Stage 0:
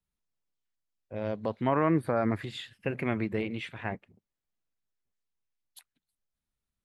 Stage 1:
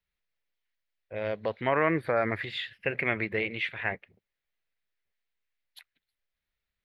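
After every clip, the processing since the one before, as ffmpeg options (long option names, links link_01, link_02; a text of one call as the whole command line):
ffmpeg -i in.wav -af "equalizer=frequency=125:width_type=o:width=1:gain=-3,equalizer=frequency=250:width_type=o:width=1:gain=-7,equalizer=frequency=500:width_type=o:width=1:gain=4,equalizer=frequency=1000:width_type=o:width=1:gain=-3,equalizer=frequency=2000:width_type=o:width=1:gain=11,equalizer=frequency=4000:width_type=o:width=1:gain=5,equalizer=frequency=8000:width_type=o:width=1:gain=-12" out.wav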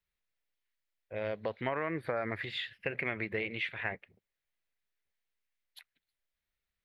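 ffmpeg -i in.wav -af "acompressor=threshold=-27dB:ratio=6,volume=-2.5dB" out.wav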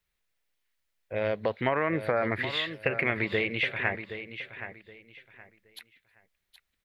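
ffmpeg -i in.wav -af "aecho=1:1:771|1542|2313:0.282|0.0705|0.0176,volume=7dB" out.wav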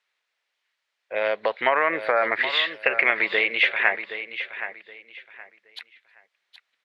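ffmpeg -i in.wav -af "highpass=650,lowpass=4600,volume=9dB" out.wav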